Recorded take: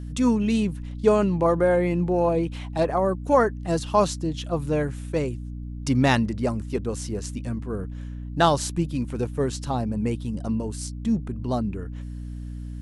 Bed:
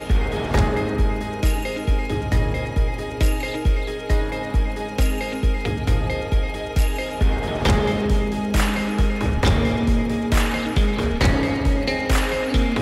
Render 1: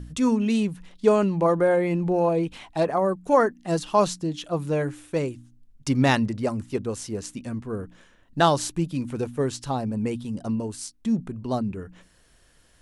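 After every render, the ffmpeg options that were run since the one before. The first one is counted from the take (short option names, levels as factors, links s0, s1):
-af "bandreject=f=60:t=h:w=4,bandreject=f=120:t=h:w=4,bandreject=f=180:t=h:w=4,bandreject=f=240:t=h:w=4,bandreject=f=300:t=h:w=4"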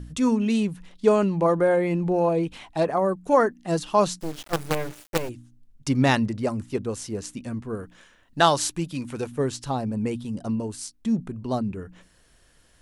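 -filter_complex "[0:a]asplit=3[s0][s1][s2];[s0]afade=t=out:st=4.19:d=0.02[s3];[s1]acrusher=bits=4:dc=4:mix=0:aa=0.000001,afade=t=in:st=4.19:d=0.02,afade=t=out:st=5.28:d=0.02[s4];[s2]afade=t=in:st=5.28:d=0.02[s5];[s3][s4][s5]amix=inputs=3:normalize=0,asettb=1/sr,asplit=3[s6][s7][s8];[s6]atrim=end=7.754[s9];[s7]atrim=start=7.75:end=9.32,asetpts=PTS-STARTPTS,afade=t=in:d=0.004:c=qsin,afade=t=out:st=1.566:d=0.004:c=qsin,tiltshelf=f=650:g=-4[s10];[s8]atrim=start=9.316[s11];[s9][s10]acrossfade=d=0.004:c1=hsin:c2=qsin[s12];[s12][s11]acrossfade=d=0.004:c1=qsin:c2=hsin"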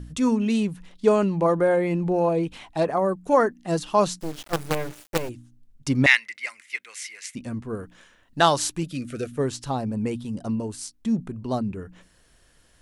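-filter_complex "[0:a]asettb=1/sr,asplit=3[s0][s1][s2];[s0]atrim=end=6.064[s3];[s1]atrim=start=6.06:end=7.35,asetpts=PTS-STARTPTS,afade=t=in:d=0.004:c=qsin,afade=t=out:st=1.286:d=0.004:c=qsin,highpass=f=2100:t=q:w=8.7[s4];[s2]atrim=start=7.346[s5];[s3][s4]acrossfade=d=0.004:c1=hsin:c2=qsin[s6];[s6][s5]acrossfade=d=0.004:c1=qsin:c2=hsin,asettb=1/sr,asplit=3[s7][s8][s9];[s7]atrim=end=8.834[s10];[s8]atrim=start=8.83:end=9.37,asetpts=PTS-STARTPTS,afade=t=in:d=0.004:c=qsin,afade=t=out:st=0.536:d=0.004:c=qsin,asuperstop=centerf=910:order=12:qfactor=2[s11];[s9]atrim=start=9.366[s12];[s10][s11]acrossfade=d=0.004:c1=hsin:c2=qsin[s13];[s13][s12]acrossfade=d=0.004:c1=qsin:c2=hsin"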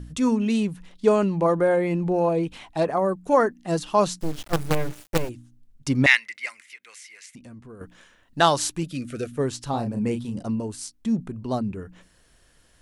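-filter_complex "[0:a]asettb=1/sr,asplit=3[s0][s1][s2];[s0]atrim=end=4.204[s3];[s1]atrim=start=4.2:end=5.25,asetpts=PTS-STARTPTS,afade=t=in:d=0.004:c=qsin,afade=t=out:st=1.046:d=0.004:c=qsin,lowshelf=f=170:g=9[s4];[s2]atrim=start=5.246[s5];[s3][s4]acrossfade=d=0.004:c1=hsin:c2=qsin[s6];[s6][s5]acrossfade=d=0.004:c1=qsin:c2=hsin,asettb=1/sr,asplit=3[s7][s8][s9];[s7]atrim=end=6.624[s10];[s8]atrim=start=6.62:end=7.81,asetpts=PTS-STARTPTS,afade=t=in:d=0.004:c=qsin,afade=t=out:st=1.186:d=0.004:c=qsin,acompressor=threshold=0.00631:ratio=3:attack=3.2:release=140:knee=1:detection=peak[s11];[s9]atrim=start=7.806[s12];[s10][s11]acrossfade=d=0.004:c1=hsin:c2=qsin[s13];[s13][s12]acrossfade=d=0.004:c1=qsin:c2=hsin,asettb=1/sr,asplit=3[s14][s15][s16];[s14]atrim=end=9.704[s17];[s15]atrim=start=9.7:end=10.43,asetpts=PTS-STARTPTS,afade=t=in:d=0.004:c=qsin,afade=t=out:st=0.726:d=0.004:c=qsin,asplit=2[s18][s19];[s19]adelay=34,volume=0.473[s20];[s18][s20]amix=inputs=2:normalize=0,atrim=end_sample=32193[s21];[s16]atrim=start=10.426[s22];[s17][s21]acrossfade=d=0.004:c1=hsin:c2=qsin[s23];[s23][s22]acrossfade=d=0.004:c1=qsin:c2=hsin"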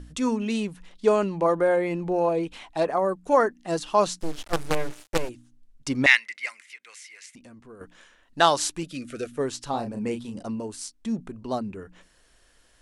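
-af "lowpass=11000,equalizer=f=120:t=o:w=1.8:g=-9.5"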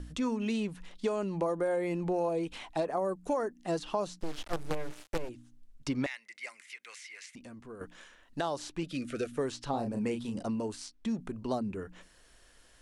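-filter_complex "[0:a]alimiter=limit=0.211:level=0:latency=1:release=424,acrossover=split=790|5200[s0][s1][s2];[s0]acompressor=threshold=0.0316:ratio=4[s3];[s1]acompressor=threshold=0.00794:ratio=4[s4];[s2]acompressor=threshold=0.00178:ratio=4[s5];[s3][s4][s5]amix=inputs=3:normalize=0"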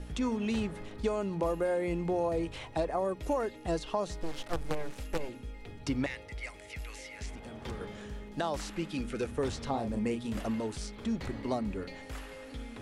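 -filter_complex "[1:a]volume=0.0668[s0];[0:a][s0]amix=inputs=2:normalize=0"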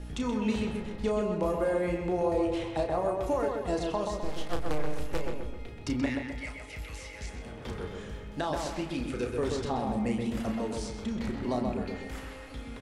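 -filter_complex "[0:a]asplit=2[s0][s1];[s1]adelay=33,volume=0.473[s2];[s0][s2]amix=inputs=2:normalize=0,asplit=2[s3][s4];[s4]adelay=129,lowpass=f=2400:p=1,volume=0.708,asplit=2[s5][s6];[s6]adelay=129,lowpass=f=2400:p=1,volume=0.49,asplit=2[s7][s8];[s8]adelay=129,lowpass=f=2400:p=1,volume=0.49,asplit=2[s9][s10];[s10]adelay=129,lowpass=f=2400:p=1,volume=0.49,asplit=2[s11][s12];[s12]adelay=129,lowpass=f=2400:p=1,volume=0.49,asplit=2[s13][s14];[s14]adelay=129,lowpass=f=2400:p=1,volume=0.49[s15];[s3][s5][s7][s9][s11][s13][s15]amix=inputs=7:normalize=0"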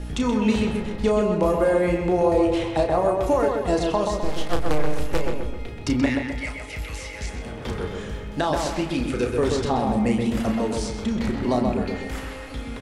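-af "volume=2.66"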